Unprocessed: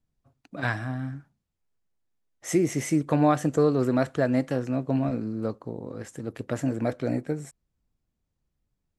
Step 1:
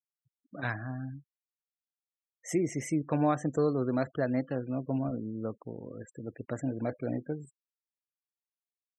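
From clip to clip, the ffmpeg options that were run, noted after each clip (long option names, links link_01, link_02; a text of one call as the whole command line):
ffmpeg -i in.wav -af "afftfilt=real='re*gte(hypot(re,im),0.0141)':imag='im*gte(hypot(re,im),0.0141)':win_size=1024:overlap=0.75,volume=-6dB" out.wav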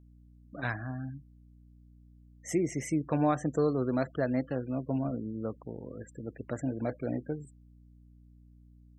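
ffmpeg -i in.wav -af "aeval=exprs='val(0)+0.00178*(sin(2*PI*60*n/s)+sin(2*PI*2*60*n/s)/2+sin(2*PI*3*60*n/s)/3+sin(2*PI*4*60*n/s)/4+sin(2*PI*5*60*n/s)/5)':channel_layout=same" out.wav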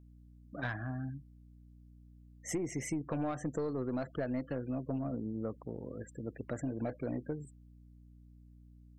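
ffmpeg -i in.wav -af "aeval=exprs='(tanh(10*val(0)+0.25)-tanh(0.25))/10':channel_layout=same,acompressor=threshold=-32dB:ratio=6" out.wav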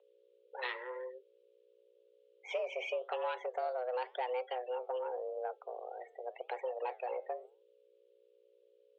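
ffmpeg -i in.wav -af "aexciter=amount=5.5:drive=6.2:freq=2400,flanger=delay=4.1:depth=7.8:regen=-84:speed=0.9:shape=sinusoidal,highpass=frequency=190:width_type=q:width=0.5412,highpass=frequency=190:width_type=q:width=1.307,lowpass=frequency=3100:width_type=q:width=0.5176,lowpass=frequency=3100:width_type=q:width=0.7071,lowpass=frequency=3100:width_type=q:width=1.932,afreqshift=250,volume=4dB" out.wav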